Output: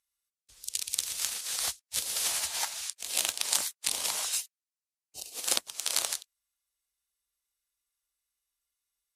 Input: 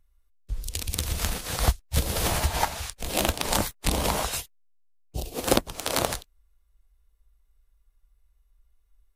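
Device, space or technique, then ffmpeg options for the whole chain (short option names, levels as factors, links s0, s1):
piezo pickup straight into a mixer: -filter_complex "[0:a]asettb=1/sr,asplit=3[s0][s1][s2];[s0]atrim=end=4.384[s3];[s1]atrim=start=4.38:end=5.32,asetpts=PTS-STARTPTS,afade=t=in:d=0.004:c=qsin,afade=t=out:st=0.936:d=0.004:c=qsin,bandreject=f=3400:w=8.2[s4];[s2]atrim=start=5.316[s5];[s3][s4]acrossfade=d=0.004:c1=hsin:c2=qsin[s6];[s6][s5]acrossfade=d=0.004:c1=qsin:c2=hsin,lowpass=8400,aderivative,volume=1.68"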